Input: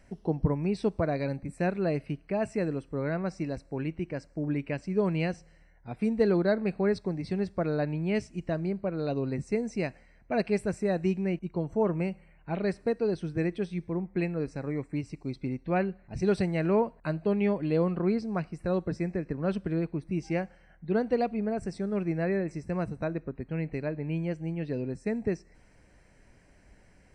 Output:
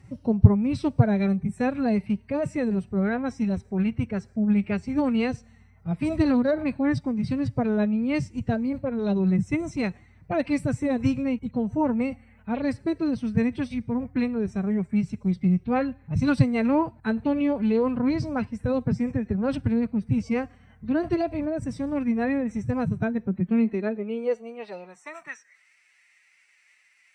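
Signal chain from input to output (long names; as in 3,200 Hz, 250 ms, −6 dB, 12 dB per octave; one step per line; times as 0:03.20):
phase-vocoder pitch shift with formants kept +6 semitones
low shelf with overshoot 210 Hz +7 dB, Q 1.5
high-pass filter sweep 110 Hz → 2,200 Hz, 0:22.98–0:25.71
level +3 dB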